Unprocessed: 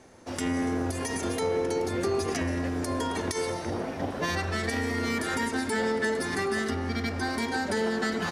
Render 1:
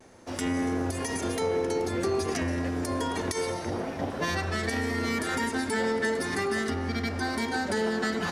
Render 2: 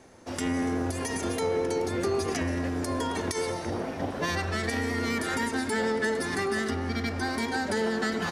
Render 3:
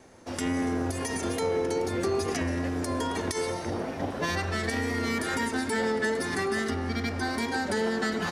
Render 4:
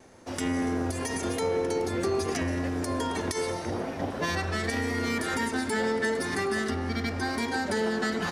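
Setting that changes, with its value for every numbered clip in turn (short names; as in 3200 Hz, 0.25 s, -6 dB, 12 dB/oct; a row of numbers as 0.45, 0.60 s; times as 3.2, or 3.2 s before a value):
vibrato, rate: 0.36, 9.4, 2.3, 0.85 Hz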